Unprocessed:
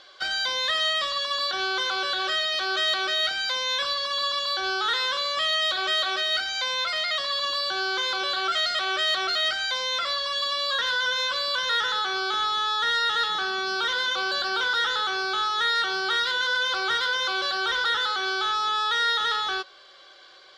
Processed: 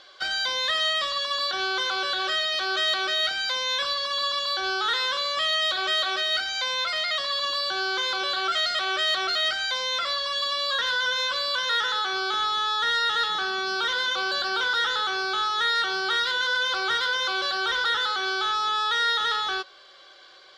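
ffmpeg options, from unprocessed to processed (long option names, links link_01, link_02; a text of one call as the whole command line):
ffmpeg -i in.wav -filter_complex "[0:a]asettb=1/sr,asplit=3[link_01][link_02][link_03];[link_01]atrim=end=11.464[link_04];[link_02]atrim=start=11.46:end=12.13,asetpts=PTS-STARTPTS,afade=type=in:duration=0.004:curve=qsin,afade=type=out:start_time=0.666:duration=0.004:curve=qsin,lowshelf=frequency=120:gain=-8[link_05];[link_03]atrim=start=12.126[link_06];[link_04][link_05]acrossfade=duration=0.004:curve1=hsin:curve2=qsin[link_07];[link_07][link_06]acrossfade=duration=0.004:curve1=qsin:curve2=hsin" out.wav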